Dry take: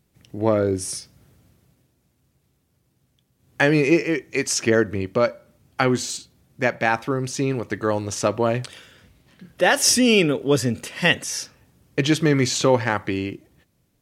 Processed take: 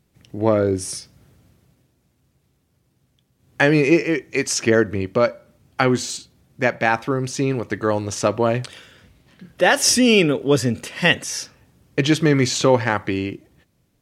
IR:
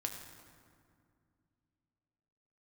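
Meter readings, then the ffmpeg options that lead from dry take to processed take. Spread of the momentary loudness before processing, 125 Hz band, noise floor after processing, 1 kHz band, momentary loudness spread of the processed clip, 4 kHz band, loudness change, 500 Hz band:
13 LU, +2.0 dB, −66 dBFS, +2.0 dB, 13 LU, +1.5 dB, +2.0 dB, +2.0 dB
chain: -af "highshelf=frequency=8900:gain=-4.5,volume=2dB"

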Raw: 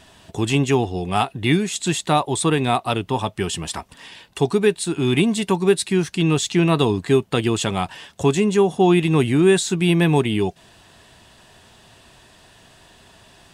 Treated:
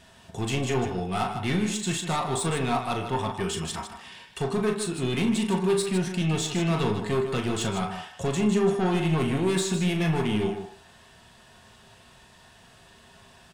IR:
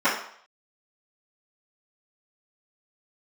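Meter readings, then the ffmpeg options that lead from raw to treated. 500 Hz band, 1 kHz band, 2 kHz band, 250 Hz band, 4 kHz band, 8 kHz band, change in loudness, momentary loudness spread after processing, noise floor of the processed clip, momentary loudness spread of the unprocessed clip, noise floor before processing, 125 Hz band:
−8.0 dB, −6.5 dB, −7.0 dB, −7.0 dB, −7.0 dB, −5.5 dB, −7.0 dB, 8 LU, −54 dBFS, 9 LU, −51 dBFS, −6.0 dB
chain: -filter_complex "[0:a]aeval=exprs='(tanh(6.31*val(0)+0.1)-tanh(0.1))/6.31':channel_layout=same,aecho=1:1:37.9|154.5:0.398|0.355,asplit=2[link_01][link_02];[1:a]atrim=start_sample=2205[link_03];[link_02][link_03]afir=irnorm=-1:irlink=0,volume=-21dB[link_04];[link_01][link_04]amix=inputs=2:normalize=0,volume=-5.5dB"

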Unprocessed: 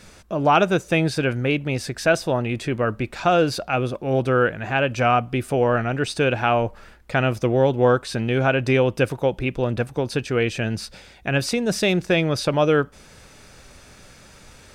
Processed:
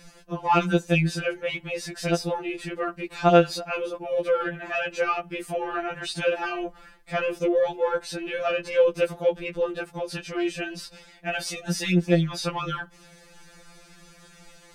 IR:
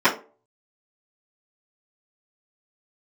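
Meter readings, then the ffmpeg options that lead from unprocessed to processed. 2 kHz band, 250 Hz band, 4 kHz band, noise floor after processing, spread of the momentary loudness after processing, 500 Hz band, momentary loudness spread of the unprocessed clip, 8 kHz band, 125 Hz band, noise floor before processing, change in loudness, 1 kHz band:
−5.5 dB, −5.0 dB, −4.5 dB, −53 dBFS, 11 LU, −4.0 dB, 6 LU, −3.5 dB, −7.0 dB, −48 dBFS, −4.5 dB, −5.0 dB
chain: -af "asoftclip=type=tanh:threshold=-7.5dB,afftfilt=real='re*2.83*eq(mod(b,8),0)':imag='im*2.83*eq(mod(b,8),0)':win_size=2048:overlap=0.75,volume=-1.5dB"

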